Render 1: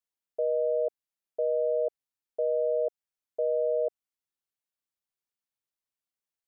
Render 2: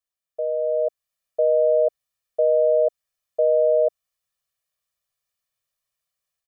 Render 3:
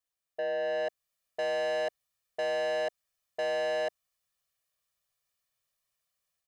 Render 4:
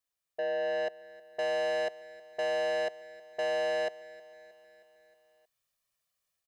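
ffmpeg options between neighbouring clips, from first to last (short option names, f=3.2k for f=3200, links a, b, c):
-af "equalizer=f=330:t=o:w=0.76:g=-9.5,aecho=1:1:1.7:0.68,dynaudnorm=f=580:g=3:m=7.5dB"
-af "asoftclip=type=tanh:threshold=-29dB"
-af "aecho=1:1:314|628|942|1256|1570:0.106|0.0636|0.0381|0.0229|0.0137"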